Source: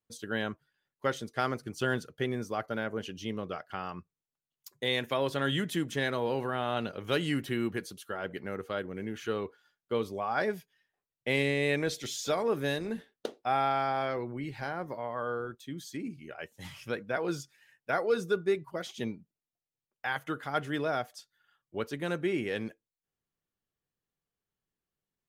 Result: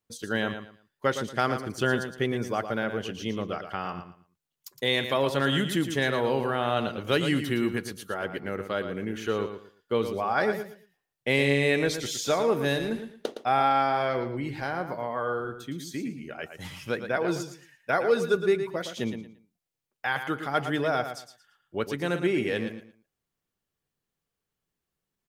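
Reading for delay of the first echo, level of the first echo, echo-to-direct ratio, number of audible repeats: 114 ms, −9.0 dB, −8.5 dB, 3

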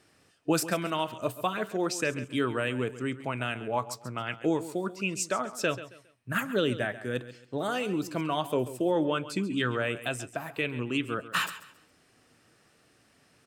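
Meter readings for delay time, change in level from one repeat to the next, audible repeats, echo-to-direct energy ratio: 136 ms, −10.5 dB, 2, −14.0 dB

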